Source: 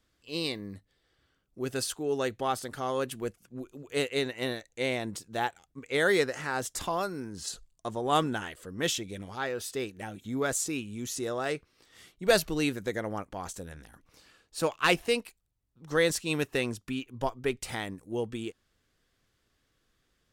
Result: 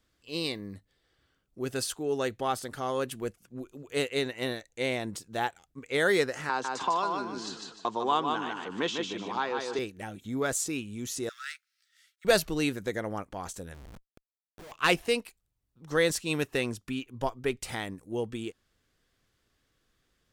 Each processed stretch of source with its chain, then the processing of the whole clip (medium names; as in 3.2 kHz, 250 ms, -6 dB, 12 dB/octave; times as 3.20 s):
6.49–9.79 s: cabinet simulation 250–5800 Hz, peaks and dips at 580 Hz -5 dB, 990 Hz +9 dB, 1.9 kHz -5 dB, 5.4 kHz -4 dB + feedback delay 150 ms, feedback 24%, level -5 dB + three bands compressed up and down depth 70%
11.29–12.25 s: companding laws mixed up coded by A + rippled Chebyshev high-pass 1.3 kHz, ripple 3 dB + hard clipper -28.5 dBFS
13.74–14.72 s: low-pass 1.4 kHz 24 dB/octave + compression 10:1, threshold -33 dBFS + Schmitt trigger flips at -55 dBFS
whole clip: none